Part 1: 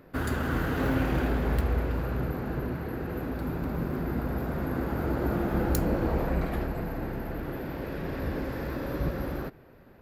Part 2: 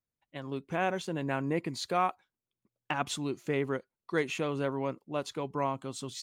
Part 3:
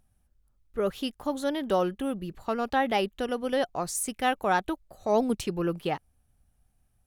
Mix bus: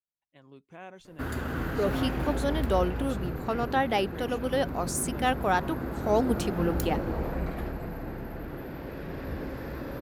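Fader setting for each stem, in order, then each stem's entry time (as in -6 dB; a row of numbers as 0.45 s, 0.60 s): -3.5 dB, -15.0 dB, -0.5 dB; 1.05 s, 0.00 s, 1.00 s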